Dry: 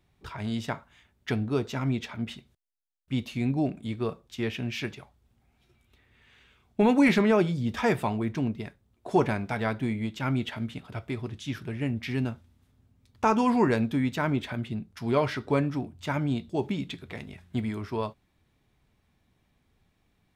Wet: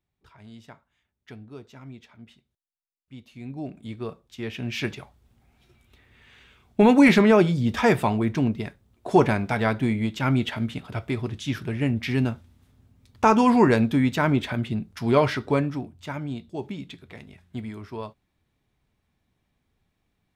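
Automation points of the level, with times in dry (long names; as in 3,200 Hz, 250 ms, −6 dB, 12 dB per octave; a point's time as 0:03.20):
0:03.23 −14.5 dB
0:03.84 −3 dB
0:04.42 −3 dB
0:04.87 +5.5 dB
0:15.28 +5.5 dB
0:16.17 −4 dB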